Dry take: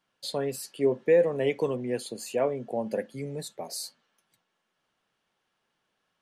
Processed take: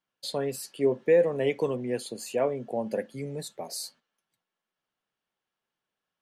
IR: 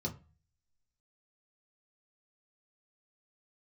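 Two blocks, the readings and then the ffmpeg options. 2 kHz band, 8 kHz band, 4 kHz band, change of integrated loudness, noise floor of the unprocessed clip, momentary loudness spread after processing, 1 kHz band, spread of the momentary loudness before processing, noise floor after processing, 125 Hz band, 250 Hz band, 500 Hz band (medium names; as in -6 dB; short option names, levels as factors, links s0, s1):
0.0 dB, 0.0 dB, 0.0 dB, 0.0 dB, -79 dBFS, 14 LU, 0.0 dB, 14 LU, under -85 dBFS, 0.0 dB, 0.0 dB, 0.0 dB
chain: -af "agate=range=0.316:threshold=0.00224:ratio=16:detection=peak"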